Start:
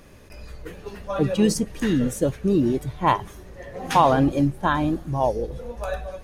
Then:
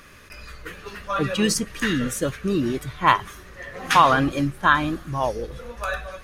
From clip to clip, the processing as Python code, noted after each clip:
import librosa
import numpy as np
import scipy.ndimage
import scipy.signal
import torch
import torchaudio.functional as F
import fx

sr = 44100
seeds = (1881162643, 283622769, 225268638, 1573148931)

y = fx.curve_eq(x, sr, hz=(860.0, 1200.0, 7900.0), db=(0, 13, 7))
y = y * 10.0 ** (-3.0 / 20.0)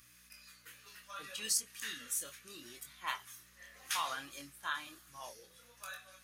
y = np.diff(x, prepend=0.0)
y = fx.add_hum(y, sr, base_hz=60, snr_db=26)
y = fx.chorus_voices(y, sr, voices=2, hz=0.68, base_ms=25, depth_ms=3.9, mix_pct=35)
y = y * 10.0 ** (-3.5 / 20.0)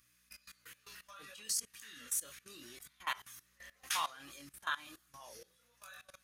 y = fx.level_steps(x, sr, step_db=19)
y = y * 10.0 ** (4.0 / 20.0)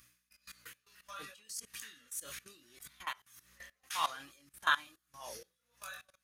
y = x * 10.0 ** (-20 * (0.5 - 0.5 * np.cos(2.0 * np.pi * 1.7 * np.arange(len(x)) / sr)) / 20.0)
y = y * 10.0 ** (8.0 / 20.0)